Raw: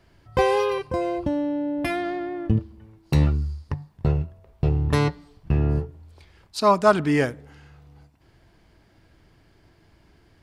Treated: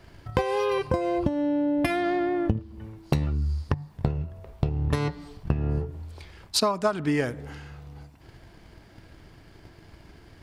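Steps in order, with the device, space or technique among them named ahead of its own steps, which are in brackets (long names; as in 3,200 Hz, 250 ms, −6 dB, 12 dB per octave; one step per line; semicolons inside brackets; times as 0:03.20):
drum-bus smash (transient designer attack +8 dB, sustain +3 dB; downward compressor 12 to 1, threshold −26 dBFS, peak gain reduction 20 dB; soft clipping −11.5 dBFS, distortion −25 dB)
level +5.5 dB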